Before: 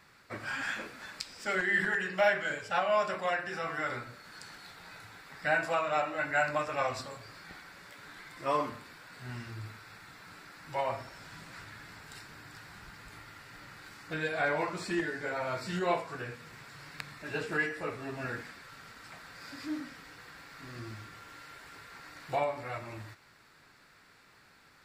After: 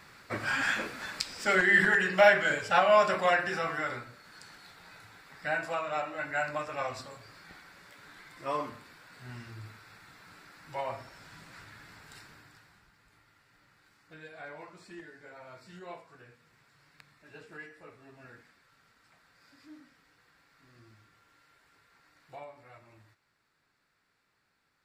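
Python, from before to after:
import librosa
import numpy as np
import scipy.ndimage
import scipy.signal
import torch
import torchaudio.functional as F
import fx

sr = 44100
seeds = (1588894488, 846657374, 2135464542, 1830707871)

y = fx.gain(x, sr, db=fx.line((3.46, 6.0), (4.11, -3.0), (12.26, -3.0), (12.91, -15.0)))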